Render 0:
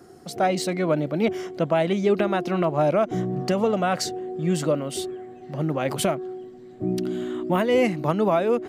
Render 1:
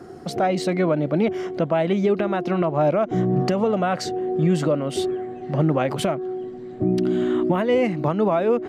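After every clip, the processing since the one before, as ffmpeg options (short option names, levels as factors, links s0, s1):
-af "lowpass=f=2600:p=1,alimiter=limit=0.106:level=0:latency=1:release=422,volume=2.66"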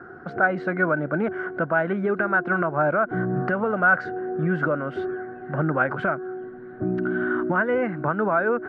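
-af "lowpass=f=1500:t=q:w=13,volume=0.562"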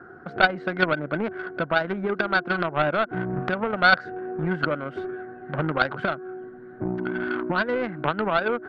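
-filter_complex "[0:a]asplit=2[s0][s1];[s1]acompressor=threshold=0.0355:ratio=6,volume=0.891[s2];[s0][s2]amix=inputs=2:normalize=0,aeval=exprs='0.473*(cos(1*acos(clip(val(0)/0.473,-1,1)))-cos(1*PI/2))+0.119*(cos(3*acos(clip(val(0)/0.473,-1,1)))-cos(3*PI/2))':c=same,volume=1.5"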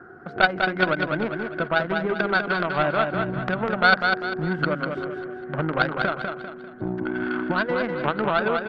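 -af "aecho=1:1:198|396|594|792|990:0.562|0.219|0.0855|0.0334|0.013"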